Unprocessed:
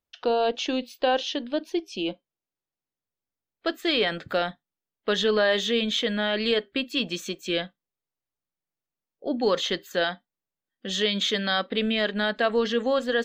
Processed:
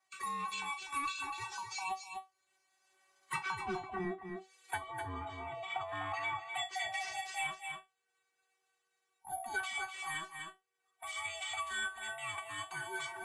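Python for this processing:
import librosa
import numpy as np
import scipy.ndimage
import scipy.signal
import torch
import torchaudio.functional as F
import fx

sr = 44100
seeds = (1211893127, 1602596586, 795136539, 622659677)

y = fx.band_swap(x, sr, width_hz=500)
y = fx.doppler_pass(y, sr, speed_mps=32, closest_m=16.0, pass_at_s=4.1)
y = (np.kron(y[::4], np.eye(4)[0]) * 4)[:len(y)]
y = scipy.signal.sosfilt(scipy.signal.butter(4, 98.0, 'highpass', fs=sr, output='sos'), y)
y = fx.transient(y, sr, attack_db=-9, sustain_db=7)
y = fx.band_shelf(y, sr, hz=1500.0, db=8.0, octaves=1.7)
y = fx.env_lowpass_down(y, sr, base_hz=370.0, full_db=-21.5)
y = scipy.signal.sosfilt(scipy.signal.butter(4, 8700.0, 'lowpass', fs=sr, output='sos'), y)
y = fx.notch(y, sr, hz=5500.0, q=9.1)
y = fx.comb_fb(y, sr, f0_hz=380.0, decay_s=0.19, harmonics='all', damping=0.0, mix_pct=100)
y = y + 10.0 ** (-9.5 / 20.0) * np.pad(y, (int(248 * sr / 1000.0), 0))[:len(y)]
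y = fx.band_squash(y, sr, depth_pct=70)
y = y * 10.0 ** (17.5 / 20.0)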